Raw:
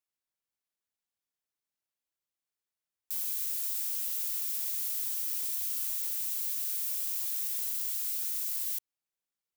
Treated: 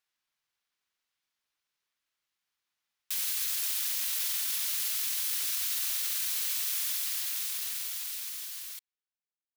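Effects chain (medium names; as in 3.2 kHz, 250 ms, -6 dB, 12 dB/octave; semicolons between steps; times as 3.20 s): fade out at the end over 2.81 s; high-order bell 2.8 kHz +8.5 dB 2.6 oct; harmony voices -7 st -1 dB; trim -1 dB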